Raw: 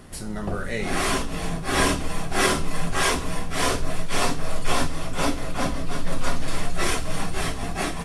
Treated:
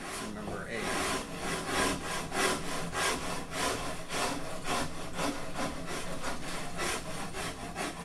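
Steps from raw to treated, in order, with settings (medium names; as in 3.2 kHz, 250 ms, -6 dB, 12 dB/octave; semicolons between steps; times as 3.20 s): bass shelf 98 Hz -11 dB; reverse echo 918 ms -7 dB; trim -8 dB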